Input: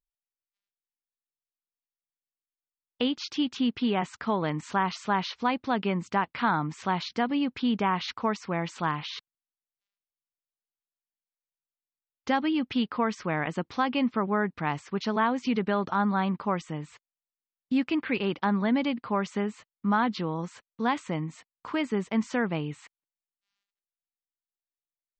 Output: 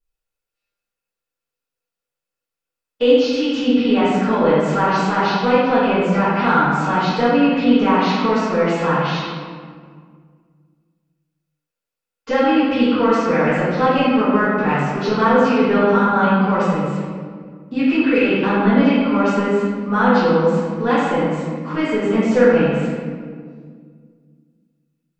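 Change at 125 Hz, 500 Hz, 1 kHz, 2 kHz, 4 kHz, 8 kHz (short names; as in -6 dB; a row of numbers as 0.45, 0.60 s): +11.5 dB, +16.0 dB, +10.5 dB, +11.0 dB, +8.0 dB, n/a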